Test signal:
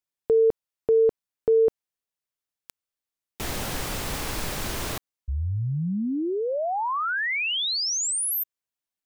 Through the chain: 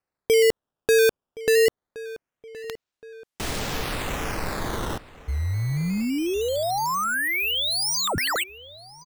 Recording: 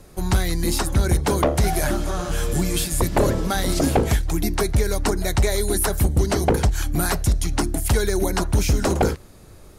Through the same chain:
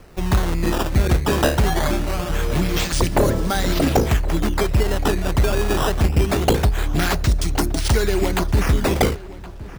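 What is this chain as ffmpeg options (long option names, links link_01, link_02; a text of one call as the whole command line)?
ffmpeg -i in.wav -filter_complex "[0:a]acrusher=samples=12:mix=1:aa=0.000001:lfo=1:lforange=19.2:lforate=0.23,asplit=2[link_01][link_02];[link_02]adelay=1070,lowpass=frequency=3200:poles=1,volume=-17.5dB,asplit=2[link_03][link_04];[link_04]adelay=1070,lowpass=frequency=3200:poles=1,volume=0.44,asplit=2[link_05][link_06];[link_06]adelay=1070,lowpass=frequency=3200:poles=1,volume=0.44,asplit=2[link_07][link_08];[link_08]adelay=1070,lowpass=frequency=3200:poles=1,volume=0.44[link_09];[link_03][link_05][link_07][link_09]amix=inputs=4:normalize=0[link_10];[link_01][link_10]amix=inputs=2:normalize=0,volume=1.5dB" out.wav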